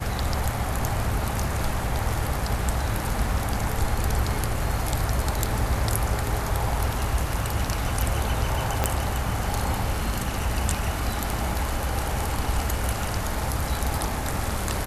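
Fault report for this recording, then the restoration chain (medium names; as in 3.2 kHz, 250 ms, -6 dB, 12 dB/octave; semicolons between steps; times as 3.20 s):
8.84 s: pop -7 dBFS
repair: de-click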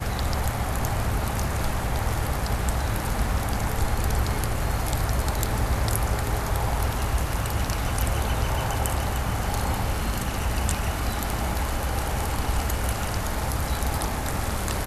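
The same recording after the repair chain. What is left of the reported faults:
8.84 s: pop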